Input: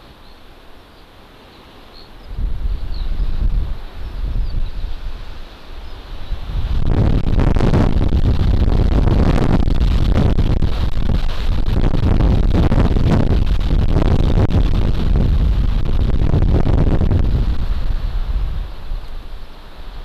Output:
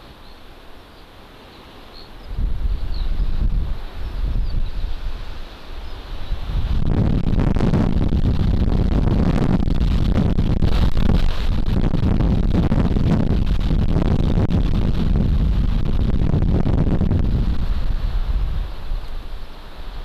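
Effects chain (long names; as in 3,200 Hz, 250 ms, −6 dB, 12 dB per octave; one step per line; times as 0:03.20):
dynamic equaliser 190 Hz, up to +6 dB, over −32 dBFS, Q 1.8
downward compressor, threshold −14 dBFS, peak gain reduction 7.5 dB
0:10.63–0:11.31: leveller curve on the samples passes 2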